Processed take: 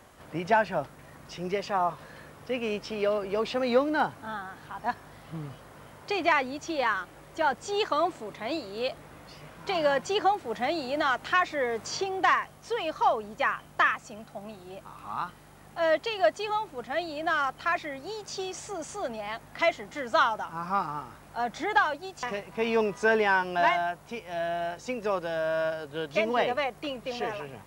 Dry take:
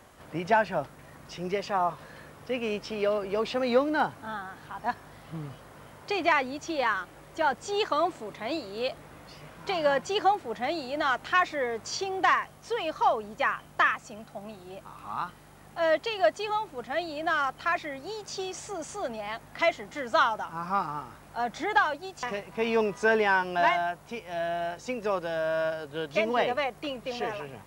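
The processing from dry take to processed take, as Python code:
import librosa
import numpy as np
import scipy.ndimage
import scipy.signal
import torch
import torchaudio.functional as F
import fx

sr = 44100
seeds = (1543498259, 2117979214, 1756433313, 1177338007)

y = fx.band_squash(x, sr, depth_pct=40, at=(9.75, 12.06))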